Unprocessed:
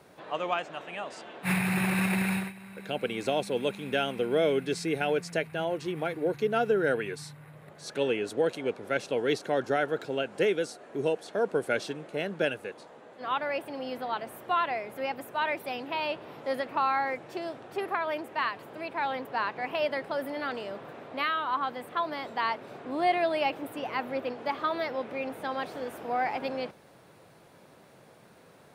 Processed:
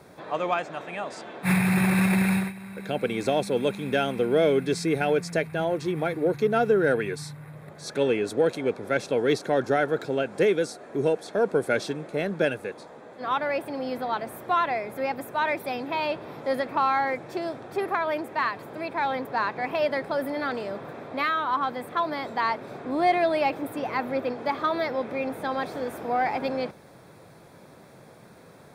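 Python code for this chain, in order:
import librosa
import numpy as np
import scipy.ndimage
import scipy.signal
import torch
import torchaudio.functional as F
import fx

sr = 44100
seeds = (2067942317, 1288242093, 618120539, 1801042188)

p1 = fx.low_shelf(x, sr, hz=270.0, db=4.5)
p2 = fx.notch(p1, sr, hz=2900.0, q=6.0)
p3 = 10.0 ** (-26.5 / 20.0) * np.tanh(p2 / 10.0 ** (-26.5 / 20.0))
p4 = p2 + F.gain(torch.from_numpy(p3), -11.0).numpy()
y = F.gain(torch.from_numpy(p4), 2.0).numpy()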